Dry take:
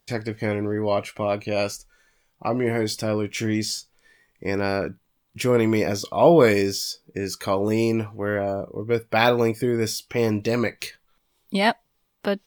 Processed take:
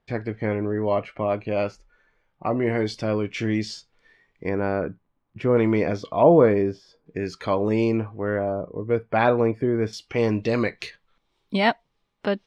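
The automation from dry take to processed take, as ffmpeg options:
ffmpeg -i in.wav -af "asetnsamples=nb_out_samples=441:pad=0,asendcmd='2.62 lowpass f 3600;4.49 lowpass f 1500;5.57 lowpass f 2500;6.23 lowpass f 1200;7.06 lowpass f 3200;7.97 lowpass f 1700;9.93 lowpass f 4200',lowpass=2100" out.wav

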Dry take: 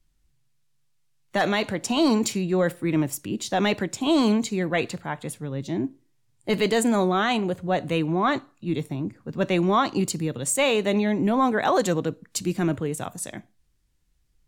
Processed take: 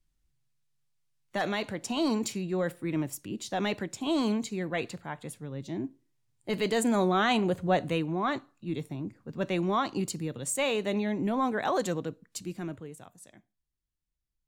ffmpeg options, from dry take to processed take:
ffmpeg -i in.wav -af "volume=-0.5dB,afade=type=in:start_time=6.52:duration=1.14:silence=0.446684,afade=type=out:start_time=7.66:duration=0.4:silence=0.473151,afade=type=out:start_time=11.82:duration=1.27:silence=0.251189" out.wav

